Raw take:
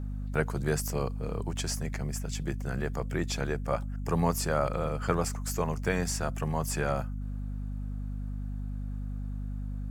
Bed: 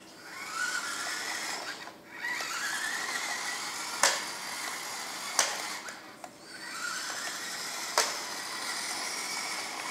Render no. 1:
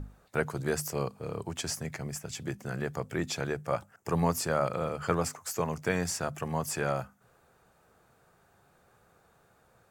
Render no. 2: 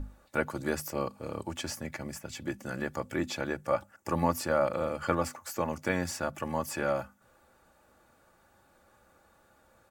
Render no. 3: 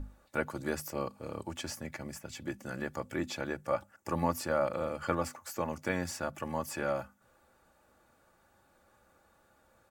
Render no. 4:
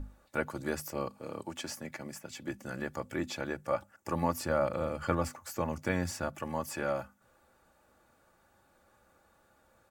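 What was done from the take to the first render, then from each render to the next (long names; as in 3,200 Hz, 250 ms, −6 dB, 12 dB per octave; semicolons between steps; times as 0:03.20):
mains-hum notches 50/100/150/200/250 Hz
comb filter 3.5 ms, depth 59%; dynamic equaliser 7,600 Hz, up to −7 dB, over −49 dBFS, Q 0.73
level −3 dB
0:01.18–0:02.49: high-pass filter 140 Hz; 0:04.40–0:06.29: low-shelf EQ 140 Hz +8.5 dB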